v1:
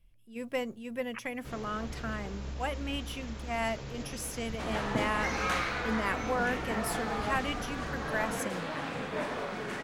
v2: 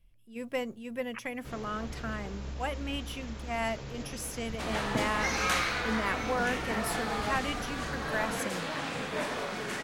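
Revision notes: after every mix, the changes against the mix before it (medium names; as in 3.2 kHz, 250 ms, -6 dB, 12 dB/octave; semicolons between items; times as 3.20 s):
second sound: add treble shelf 3.1 kHz +9.5 dB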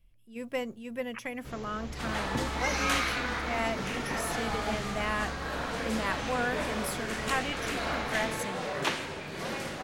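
second sound: entry -2.60 s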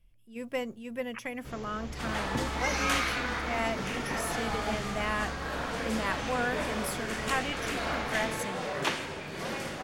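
master: add band-stop 4 kHz, Q 28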